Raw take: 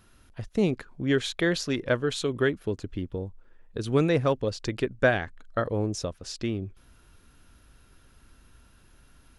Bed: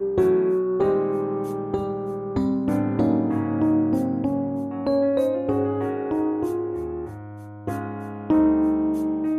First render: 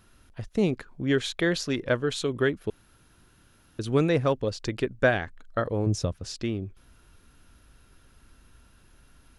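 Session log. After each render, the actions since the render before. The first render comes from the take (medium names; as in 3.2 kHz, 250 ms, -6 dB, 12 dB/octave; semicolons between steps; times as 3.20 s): 2.70–3.79 s: room tone; 5.86–6.37 s: peaking EQ 110 Hz +9.5 dB 1.7 oct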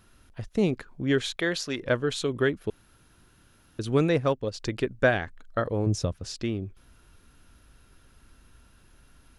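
1.36–1.81 s: bass shelf 320 Hz -8 dB; 4.14–4.54 s: upward expansion, over -36 dBFS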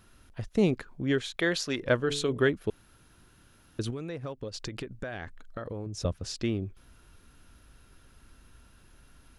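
0.91–1.34 s: fade out, to -7.5 dB; 1.96–2.49 s: de-hum 71.91 Hz, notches 12; 3.90–6.05 s: compression 20:1, threshold -32 dBFS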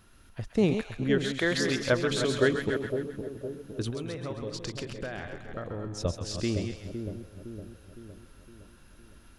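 chunks repeated in reverse 173 ms, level -8 dB; two-band feedback delay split 750 Hz, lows 511 ms, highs 133 ms, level -7 dB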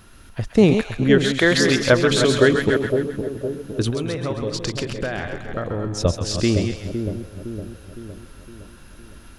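trim +10.5 dB; peak limiter -3 dBFS, peak gain reduction 3 dB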